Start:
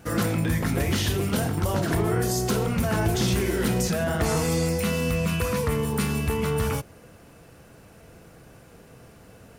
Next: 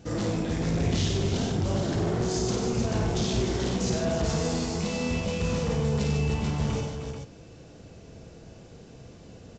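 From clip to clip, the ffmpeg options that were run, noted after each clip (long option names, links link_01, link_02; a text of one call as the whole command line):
ffmpeg -i in.wav -af "firequalizer=gain_entry='entry(360,0);entry(1300,-10);entry(3600,0)':delay=0.05:min_phase=1,aresample=16000,asoftclip=type=tanh:threshold=-25.5dB,aresample=44100,aecho=1:1:53|94|150|307|434:0.562|0.473|0.398|0.398|0.422" out.wav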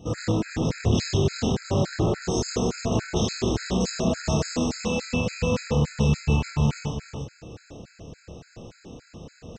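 ffmpeg -i in.wav -filter_complex "[0:a]areverse,acompressor=mode=upward:threshold=-40dB:ratio=2.5,areverse,asplit=2[link_01][link_02];[link_02]adelay=28,volume=-4dB[link_03];[link_01][link_03]amix=inputs=2:normalize=0,afftfilt=real='re*gt(sin(2*PI*3.5*pts/sr)*(1-2*mod(floor(b*sr/1024/1300),2)),0)':imag='im*gt(sin(2*PI*3.5*pts/sr)*(1-2*mod(floor(b*sr/1024/1300),2)),0)':win_size=1024:overlap=0.75,volume=4dB" out.wav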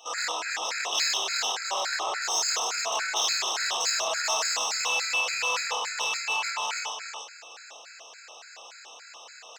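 ffmpeg -i in.wav -filter_complex "[0:a]highpass=frequency=870:width=0.5412,highpass=frequency=870:width=1.3066,asplit=2[link_01][link_02];[link_02]asoftclip=type=tanh:threshold=-35.5dB,volume=-3.5dB[link_03];[link_01][link_03]amix=inputs=2:normalize=0,volume=4.5dB" out.wav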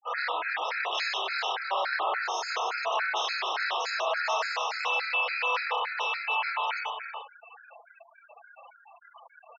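ffmpeg -i in.wav -af "aeval=exprs='0.237*sin(PI/2*1.41*val(0)/0.237)':channel_layout=same,highpass=340,lowpass=2600,afftfilt=real='re*gte(hypot(re,im),0.0282)':imag='im*gte(hypot(re,im),0.0282)':win_size=1024:overlap=0.75,volume=-4dB" out.wav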